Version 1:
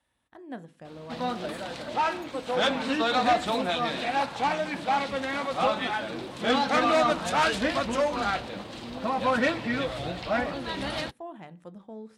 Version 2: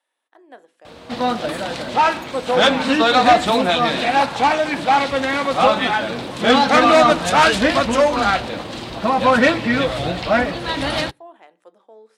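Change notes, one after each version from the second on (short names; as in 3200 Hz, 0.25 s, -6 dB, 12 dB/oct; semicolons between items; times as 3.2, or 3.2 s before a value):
speech: add HPF 370 Hz 24 dB/oct; background +10.5 dB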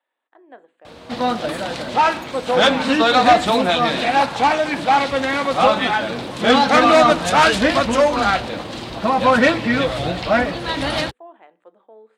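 speech: add running mean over 8 samples; background: send off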